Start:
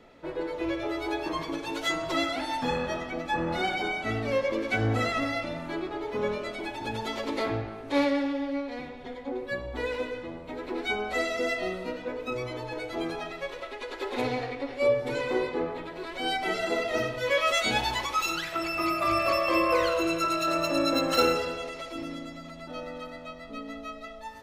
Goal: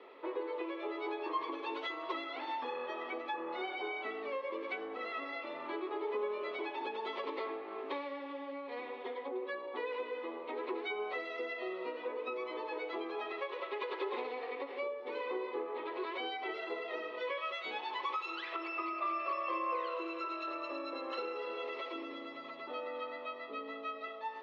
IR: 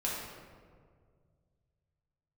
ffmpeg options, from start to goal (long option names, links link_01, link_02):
-af "acompressor=threshold=-36dB:ratio=12,highpass=frequency=360:width=0.5412,highpass=frequency=360:width=1.3066,equalizer=frequency=400:width_type=q:width=4:gain=6,equalizer=frequency=660:width_type=q:width=4:gain=-6,equalizer=frequency=1100:width_type=q:width=4:gain=9,equalizer=frequency=1500:width_type=q:width=4:gain=-7,lowpass=frequency=3500:width=0.5412,lowpass=frequency=3500:width=1.3066,volume=1dB"